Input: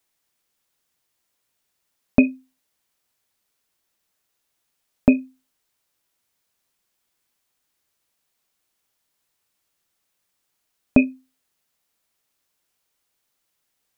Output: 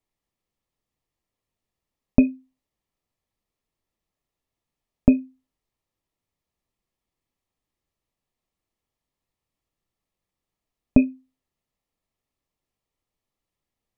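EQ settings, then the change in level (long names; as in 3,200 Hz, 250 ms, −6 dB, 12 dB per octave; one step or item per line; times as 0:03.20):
Butterworth band-reject 1,500 Hz, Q 5.9
spectral tilt −3 dB per octave
−6.5 dB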